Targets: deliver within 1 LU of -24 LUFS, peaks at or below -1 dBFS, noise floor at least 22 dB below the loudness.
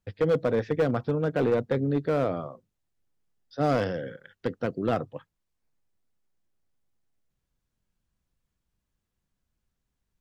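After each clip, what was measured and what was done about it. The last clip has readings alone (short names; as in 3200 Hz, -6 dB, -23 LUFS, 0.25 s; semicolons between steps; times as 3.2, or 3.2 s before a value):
clipped 0.9%; flat tops at -18.0 dBFS; loudness -27.5 LUFS; peak -18.0 dBFS; loudness target -24.0 LUFS
-> clip repair -18 dBFS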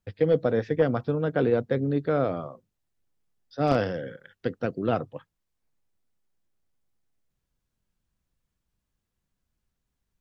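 clipped 0.0%; loudness -26.5 LUFS; peak -9.0 dBFS; loudness target -24.0 LUFS
-> gain +2.5 dB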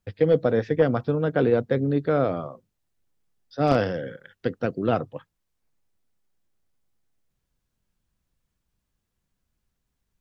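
loudness -24.0 LUFS; peak -6.5 dBFS; noise floor -80 dBFS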